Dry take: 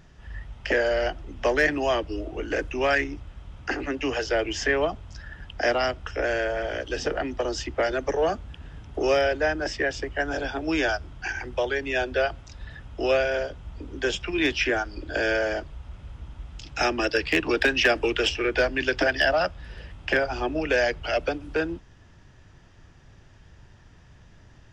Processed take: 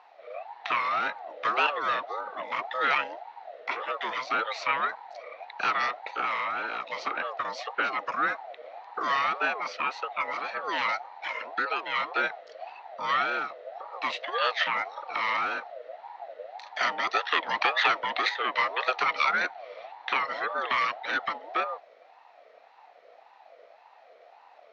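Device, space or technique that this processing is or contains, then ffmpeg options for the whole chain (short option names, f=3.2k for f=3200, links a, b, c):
voice changer toy: -af "aeval=exprs='val(0)*sin(2*PI*720*n/s+720*0.25/1.8*sin(2*PI*1.8*n/s))':c=same,highpass=470,equalizer=f=490:t=q:w=4:g=5,equalizer=f=700:t=q:w=4:g=6,equalizer=f=1.3k:t=q:w=4:g=6,equalizer=f=1.9k:t=q:w=4:g=9,equalizer=f=2.8k:t=q:w=4:g=3,equalizer=f=4.1k:t=q:w=4:g=4,lowpass=f=4.9k:w=0.5412,lowpass=f=4.9k:w=1.3066,volume=-4dB"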